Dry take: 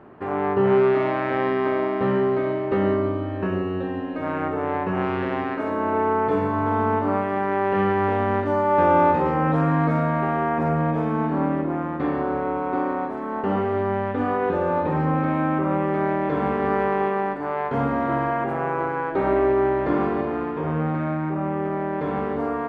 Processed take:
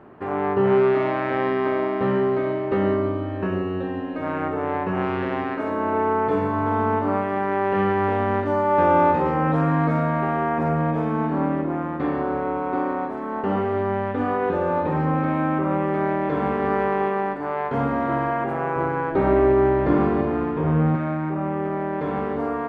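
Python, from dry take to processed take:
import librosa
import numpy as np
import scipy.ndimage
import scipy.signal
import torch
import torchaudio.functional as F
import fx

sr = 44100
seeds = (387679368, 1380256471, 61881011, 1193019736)

y = fx.low_shelf(x, sr, hz=230.0, db=9.0, at=(18.76, 20.96))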